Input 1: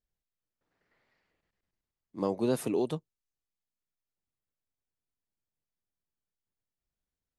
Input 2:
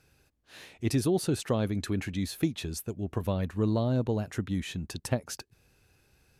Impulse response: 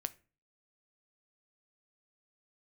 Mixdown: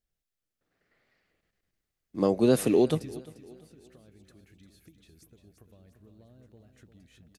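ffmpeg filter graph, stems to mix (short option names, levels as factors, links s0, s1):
-filter_complex "[0:a]volume=1.33,asplit=3[s0][s1][s2];[s1]volume=0.0841[s3];[1:a]acompressor=threshold=0.0158:ratio=6,aeval=exprs='val(0)+0.00224*(sin(2*PI*60*n/s)+sin(2*PI*2*60*n/s)/2+sin(2*PI*3*60*n/s)/3+sin(2*PI*4*60*n/s)/4+sin(2*PI*5*60*n/s)/5)':c=same,adelay=2100,volume=0.355,asplit=2[s4][s5];[s5]volume=0.2[s6];[s2]apad=whole_len=374834[s7];[s4][s7]sidechaingate=range=0.0447:threshold=0.00112:ratio=16:detection=peak[s8];[s3][s6]amix=inputs=2:normalize=0,aecho=0:1:348|696|1044|1392|1740:1|0.39|0.152|0.0593|0.0231[s9];[s0][s8][s9]amix=inputs=3:normalize=0,equalizer=f=940:t=o:w=0.33:g=-9,dynaudnorm=f=330:g=11:m=1.78"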